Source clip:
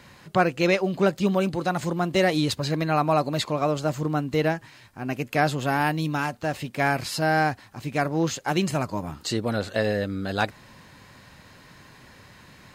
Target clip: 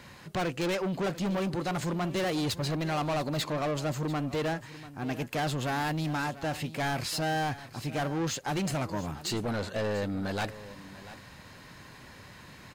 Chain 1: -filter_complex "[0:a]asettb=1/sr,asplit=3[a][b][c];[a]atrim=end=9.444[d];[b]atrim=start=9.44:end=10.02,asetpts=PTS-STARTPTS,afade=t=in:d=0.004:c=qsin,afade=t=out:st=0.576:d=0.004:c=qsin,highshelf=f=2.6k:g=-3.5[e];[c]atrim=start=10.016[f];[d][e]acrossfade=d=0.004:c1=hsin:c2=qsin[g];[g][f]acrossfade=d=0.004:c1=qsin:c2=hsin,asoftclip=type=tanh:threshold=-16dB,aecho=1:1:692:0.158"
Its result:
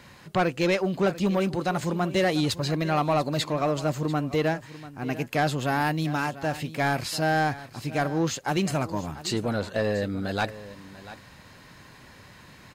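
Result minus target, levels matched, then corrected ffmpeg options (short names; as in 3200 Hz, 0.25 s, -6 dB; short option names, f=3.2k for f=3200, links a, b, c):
soft clip: distortion -10 dB
-filter_complex "[0:a]asettb=1/sr,asplit=3[a][b][c];[a]atrim=end=9.444[d];[b]atrim=start=9.44:end=10.02,asetpts=PTS-STARTPTS,afade=t=in:d=0.004:c=qsin,afade=t=out:st=0.576:d=0.004:c=qsin,highshelf=f=2.6k:g=-3.5[e];[c]atrim=start=10.016[f];[d][e]acrossfade=d=0.004:c1=hsin:c2=qsin[g];[g][f]acrossfade=d=0.004:c1=qsin:c2=hsin,asoftclip=type=tanh:threshold=-27dB,aecho=1:1:692:0.158"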